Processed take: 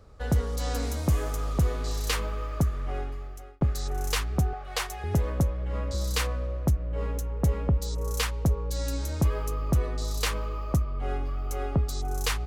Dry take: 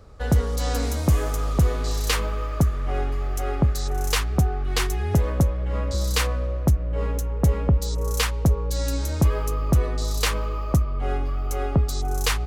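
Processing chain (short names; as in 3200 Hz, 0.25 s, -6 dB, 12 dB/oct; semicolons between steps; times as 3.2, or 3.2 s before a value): 2.81–3.61 fade out; 4.53–5.04 resonant low shelf 420 Hz -10.5 dB, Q 3; gain -5 dB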